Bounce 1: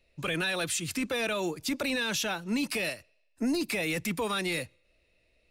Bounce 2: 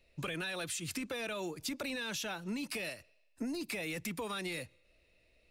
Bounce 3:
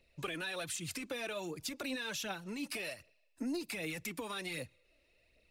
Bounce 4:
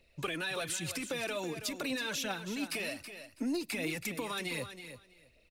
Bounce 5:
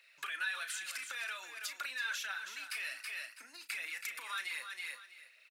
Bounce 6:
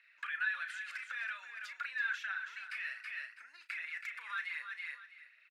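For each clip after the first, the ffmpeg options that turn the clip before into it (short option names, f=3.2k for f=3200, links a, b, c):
-af "acompressor=threshold=-36dB:ratio=6"
-af "lowshelf=f=80:g=-6.5,aphaser=in_gain=1:out_gain=1:delay=3.8:decay=0.45:speed=1.3:type=triangular,volume=-2dB"
-af "aecho=1:1:325|650:0.299|0.0508,volume=3.5dB"
-filter_complex "[0:a]acompressor=threshold=-43dB:ratio=10,highpass=f=1.5k:t=q:w=2.8,asplit=2[a][b];[b]adelay=35,volume=-10.5dB[c];[a][c]amix=inputs=2:normalize=0,volume=4dB"
-af "bandpass=f=1.7k:t=q:w=2.3:csg=0,volume=3.5dB"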